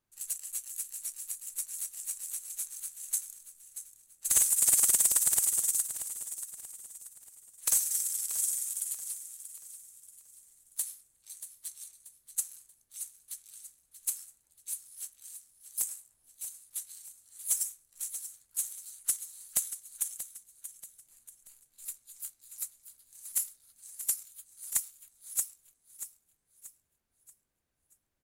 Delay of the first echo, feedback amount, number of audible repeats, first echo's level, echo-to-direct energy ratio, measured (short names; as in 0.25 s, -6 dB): 0.633 s, 40%, 3, -11.5 dB, -11.0 dB